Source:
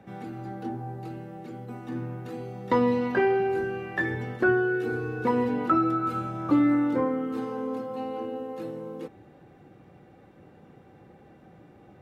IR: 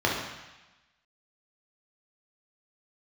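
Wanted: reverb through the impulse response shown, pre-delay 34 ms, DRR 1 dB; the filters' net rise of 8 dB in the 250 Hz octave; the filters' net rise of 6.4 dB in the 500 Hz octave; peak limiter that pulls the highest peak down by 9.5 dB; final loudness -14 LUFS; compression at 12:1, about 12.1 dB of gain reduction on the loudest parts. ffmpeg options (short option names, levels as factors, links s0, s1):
-filter_complex "[0:a]equalizer=f=250:t=o:g=8,equalizer=f=500:t=o:g=5,acompressor=threshold=0.0794:ratio=12,alimiter=limit=0.0891:level=0:latency=1,asplit=2[s0][s1];[1:a]atrim=start_sample=2205,adelay=34[s2];[s1][s2]afir=irnorm=-1:irlink=0,volume=0.168[s3];[s0][s3]amix=inputs=2:normalize=0,volume=4.22"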